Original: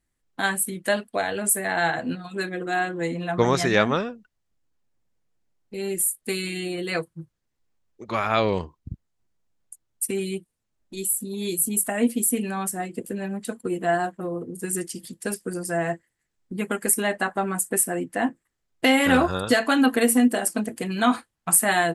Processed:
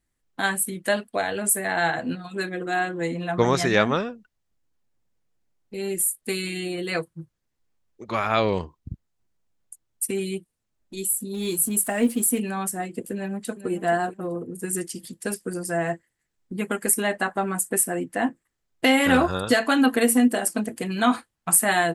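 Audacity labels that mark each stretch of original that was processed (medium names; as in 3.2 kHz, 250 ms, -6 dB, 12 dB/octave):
11.340000	12.400000	companding laws mixed up coded by mu
13.130000	13.700000	echo throw 430 ms, feedback 20%, level -12 dB
14.320000	14.730000	peaking EQ 4.1 kHz -4 dB 1.1 oct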